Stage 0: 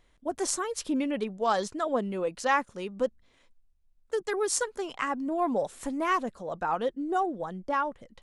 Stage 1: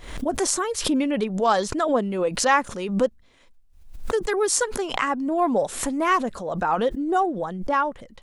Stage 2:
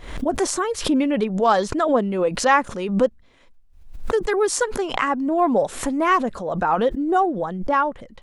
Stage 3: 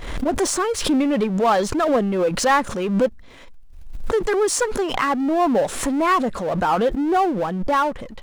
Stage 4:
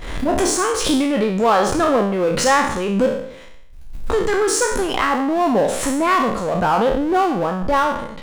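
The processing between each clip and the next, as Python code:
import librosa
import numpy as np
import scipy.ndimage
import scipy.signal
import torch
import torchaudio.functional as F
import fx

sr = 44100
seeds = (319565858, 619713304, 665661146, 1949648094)

y1 = fx.pre_swell(x, sr, db_per_s=79.0)
y1 = F.gain(torch.from_numpy(y1), 6.0).numpy()
y2 = fx.high_shelf(y1, sr, hz=4200.0, db=-7.5)
y2 = F.gain(torch.from_numpy(y2), 3.0).numpy()
y3 = fx.power_curve(y2, sr, exponent=0.7)
y3 = F.gain(torch.from_numpy(y3), -3.0).numpy()
y4 = fx.spec_trails(y3, sr, decay_s=0.7)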